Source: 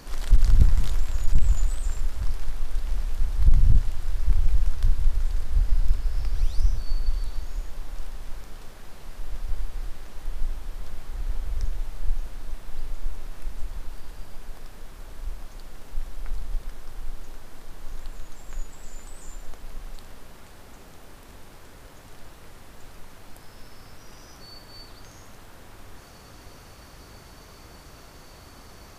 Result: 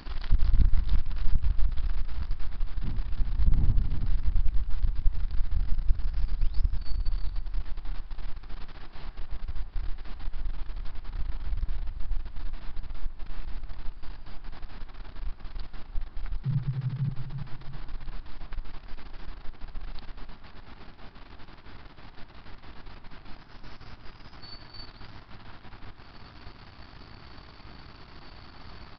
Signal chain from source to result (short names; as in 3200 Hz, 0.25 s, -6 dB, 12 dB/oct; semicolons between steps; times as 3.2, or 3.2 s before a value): half-wave gain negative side -12 dB; 2.82–4.04 wind noise 110 Hz -30 dBFS; bell 510 Hz -10.5 dB 0.46 oct; in parallel at +2.5 dB: compressor, threshold -30 dBFS, peak gain reduction 18.5 dB; 16.43–17.09 on the sum: frequency shift +120 Hz; on a send: dark delay 0.335 s, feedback 37%, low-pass 1500 Hz, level -8 dB; on the sum: downsampling 11025 Hz; gain -4.5 dB